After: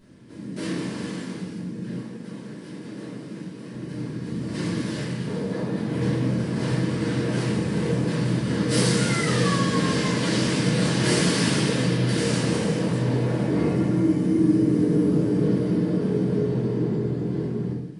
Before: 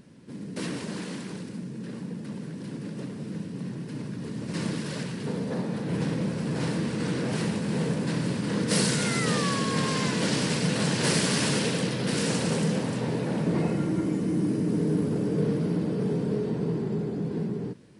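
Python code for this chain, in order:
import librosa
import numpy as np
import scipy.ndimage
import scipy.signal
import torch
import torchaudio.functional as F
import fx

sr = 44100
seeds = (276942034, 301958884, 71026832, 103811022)

y = fx.highpass(x, sr, hz=320.0, slope=6, at=(1.97, 3.73))
y = fx.room_shoebox(y, sr, seeds[0], volume_m3=150.0, walls='mixed', distance_m=2.9)
y = y * 10.0 ** (-8.0 / 20.0)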